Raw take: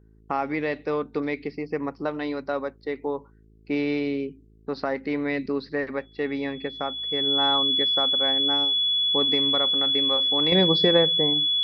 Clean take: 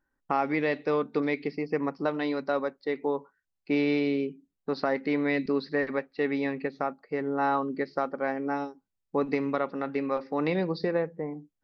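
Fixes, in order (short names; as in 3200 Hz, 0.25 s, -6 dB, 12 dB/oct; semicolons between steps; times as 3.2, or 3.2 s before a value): de-hum 54 Hz, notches 8; notch 3400 Hz, Q 30; gain correction -7.5 dB, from 10.52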